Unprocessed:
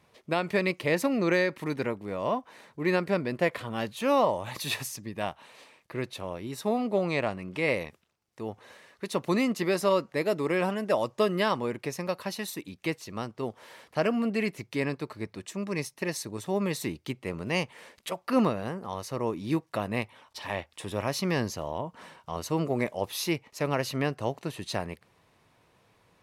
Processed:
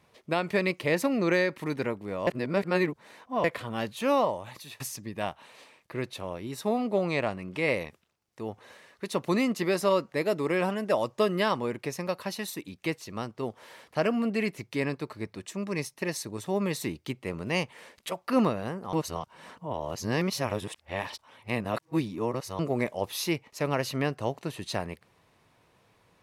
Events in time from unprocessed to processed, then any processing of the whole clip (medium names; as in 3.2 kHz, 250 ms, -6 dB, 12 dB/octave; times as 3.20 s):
2.27–3.44 s: reverse
4.09–4.80 s: fade out, to -23 dB
18.93–22.59 s: reverse